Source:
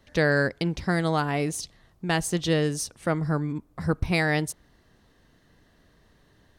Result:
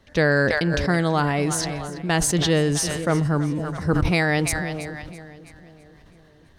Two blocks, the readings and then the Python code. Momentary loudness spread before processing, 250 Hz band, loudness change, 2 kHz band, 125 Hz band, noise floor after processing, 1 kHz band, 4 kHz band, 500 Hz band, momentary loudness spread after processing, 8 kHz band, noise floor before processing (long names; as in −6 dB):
11 LU, +4.5 dB, +4.5 dB, +4.5 dB, +5.0 dB, −52 dBFS, +4.5 dB, +5.5 dB, +4.5 dB, 10 LU, +8.0 dB, −62 dBFS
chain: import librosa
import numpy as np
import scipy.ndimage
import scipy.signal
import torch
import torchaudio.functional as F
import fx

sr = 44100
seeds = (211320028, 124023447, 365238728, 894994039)

y = fx.high_shelf(x, sr, hz=10000.0, db=-7.0)
y = fx.echo_split(y, sr, split_hz=640.0, low_ms=503, high_ms=329, feedback_pct=52, wet_db=-15.5)
y = fx.sustainer(y, sr, db_per_s=23.0)
y = y * librosa.db_to_amplitude(3.0)